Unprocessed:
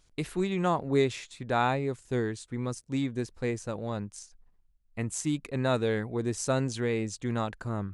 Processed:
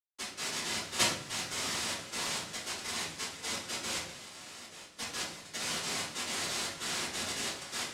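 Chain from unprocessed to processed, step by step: level-crossing sampler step -31 dBFS; steep high-pass 370 Hz 96 dB/oct; dynamic EQ 510 Hz, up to -4 dB, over -36 dBFS, Q 0.78; split-band echo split 2300 Hz, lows 0.642 s, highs 0.472 s, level -7 dB; noise vocoder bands 1; level quantiser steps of 13 dB; shoebox room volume 69 m³, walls mixed, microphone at 3 m; gain -7.5 dB

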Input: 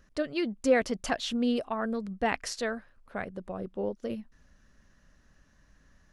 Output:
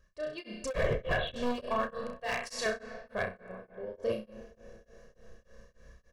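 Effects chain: 1.9–2.66 HPF 1200 Hz 6 dB/oct; flutter echo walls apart 5.6 m, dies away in 0.5 s; AGC gain up to 9.5 dB; 0.75–1.36 LPC vocoder at 8 kHz whisper; 3.23–4.02 dip -13 dB, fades 0.15 s; reverb RT60 4.9 s, pre-delay 60 ms, DRR 12.5 dB; hard clip -16 dBFS, distortion -8 dB; comb 1.8 ms, depth 72%; beating tremolo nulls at 3.4 Hz; gain -9 dB

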